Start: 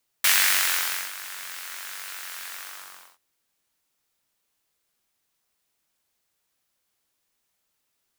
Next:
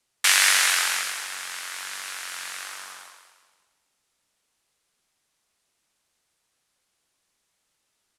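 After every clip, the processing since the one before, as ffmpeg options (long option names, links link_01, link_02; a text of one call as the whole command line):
ffmpeg -i in.wav -filter_complex "[0:a]lowpass=frequency=11000:width=0.5412,lowpass=frequency=11000:width=1.3066,acrossover=split=420[link_01][link_02];[link_01]alimiter=level_in=27dB:limit=-24dB:level=0:latency=1,volume=-27dB[link_03];[link_02]asplit=6[link_04][link_05][link_06][link_07][link_08][link_09];[link_05]adelay=175,afreqshift=-45,volume=-7.5dB[link_10];[link_06]adelay=350,afreqshift=-90,volume=-15dB[link_11];[link_07]adelay=525,afreqshift=-135,volume=-22.6dB[link_12];[link_08]adelay=700,afreqshift=-180,volume=-30.1dB[link_13];[link_09]adelay=875,afreqshift=-225,volume=-37.6dB[link_14];[link_04][link_10][link_11][link_12][link_13][link_14]amix=inputs=6:normalize=0[link_15];[link_03][link_15]amix=inputs=2:normalize=0,volume=3dB" out.wav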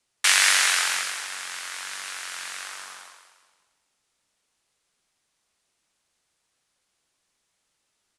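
ffmpeg -i in.wav -af "lowpass=frequency=11000:width=0.5412,lowpass=frequency=11000:width=1.3066" out.wav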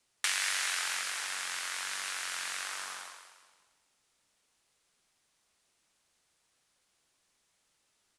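ffmpeg -i in.wav -af "acompressor=threshold=-33dB:ratio=3" out.wav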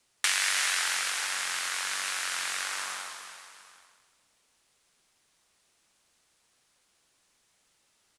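ffmpeg -i in.wav -af "aecho=1:1:331|771:0.299|0.126,volume=4.5dB" out.wav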